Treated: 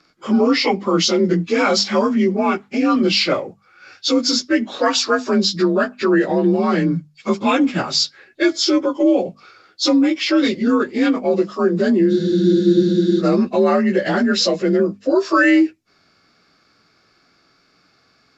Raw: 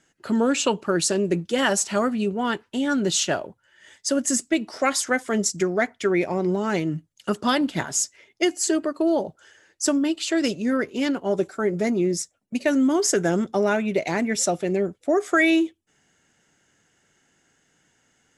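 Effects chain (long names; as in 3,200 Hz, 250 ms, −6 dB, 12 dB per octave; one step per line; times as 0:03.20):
partials spread apart or drawn together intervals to 89%
in parallel at +2 dB: brickwall limiter −19 dBFS, peak gain reduction 9 dB
on the sum: mains-hum notches 50/100/150/200/250 Hz
frozen spectrum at 0:12.12, 1.08 s
level +2.5 dB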